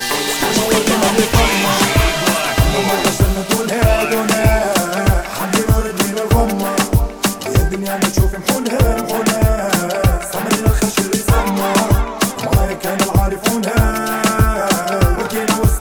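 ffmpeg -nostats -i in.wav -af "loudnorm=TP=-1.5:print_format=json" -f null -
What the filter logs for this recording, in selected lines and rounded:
"input_i" : "-15.4",
"input_tp" : "-2.3",
"input_lra" : "2.1",
"input_thresh" : "-25.4",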